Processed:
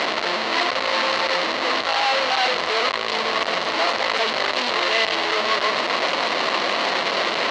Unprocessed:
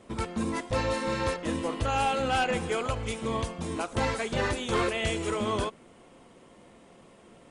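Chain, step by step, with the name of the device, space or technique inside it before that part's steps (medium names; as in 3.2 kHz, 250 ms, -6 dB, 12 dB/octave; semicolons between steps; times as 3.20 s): tilt EQ -3 dB/octave; home computer beeper (one-bit comparator; cabinet simulation 520–5500 Hz, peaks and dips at 640 Hz +5 dB, 1.1 kHz +6 dB, 2 kHz +7 dB, 2.9 kHz +6 dB, 4.2 kHz +10 dB); trim +4 dB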